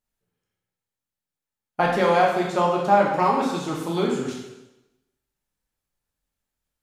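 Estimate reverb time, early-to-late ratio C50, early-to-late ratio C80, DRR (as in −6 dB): 1.0 s, 2.5 dB, 5.0 dB, −2.5 dB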